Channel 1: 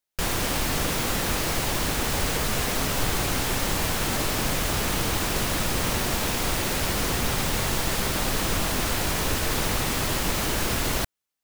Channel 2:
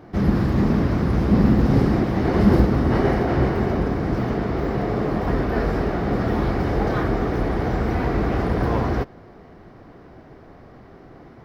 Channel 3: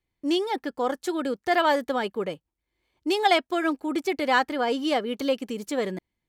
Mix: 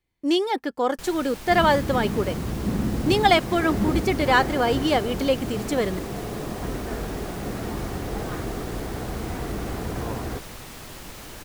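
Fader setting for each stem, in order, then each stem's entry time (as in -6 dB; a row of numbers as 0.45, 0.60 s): -14.5, -9.0, +3.0 dB; 0.80, 1.35, 0.00 s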